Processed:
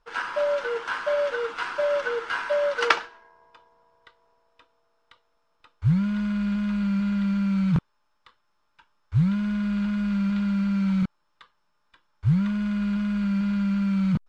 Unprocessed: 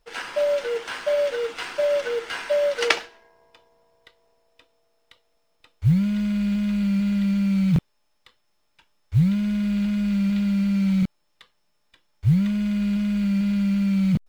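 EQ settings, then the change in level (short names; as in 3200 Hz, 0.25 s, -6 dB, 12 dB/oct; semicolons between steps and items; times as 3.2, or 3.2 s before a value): air absorption 63 m; band shelf 1200 Hz +9 dB 1 oct; -2.5 dB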